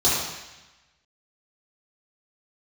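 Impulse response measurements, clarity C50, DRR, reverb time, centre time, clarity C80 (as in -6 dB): -1.0 dB, -10.0 dB, 1.1 s, 79 ms, 2.0 dB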